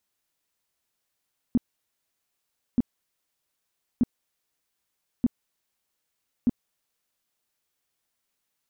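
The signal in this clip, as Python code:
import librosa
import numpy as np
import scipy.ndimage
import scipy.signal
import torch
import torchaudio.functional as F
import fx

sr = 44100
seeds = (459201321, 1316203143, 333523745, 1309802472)

y = fx.tone_burst(sr, hz=242.0, cycles=6, every_s=1.23, bursts=5, level_db=-16.0)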